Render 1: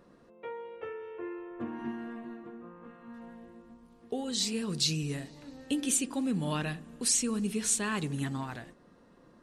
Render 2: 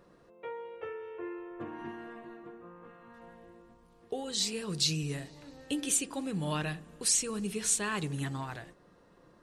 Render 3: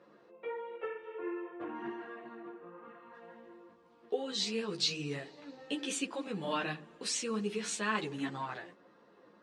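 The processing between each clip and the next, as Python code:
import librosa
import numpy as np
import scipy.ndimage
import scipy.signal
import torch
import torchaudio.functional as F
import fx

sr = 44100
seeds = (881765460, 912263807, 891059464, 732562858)

y1 = fx.peak_eq(x, sr, hz=240.0, db=-13.5, octaves=0.24)
y2 = fx.bandpass_edges(y1, sr, low_hz=230.0, high_hz=4300.0)
y2 = fx.ensemble(y2, sr)
y2 = y2 * 10.0 ** (4.0 / 20.0)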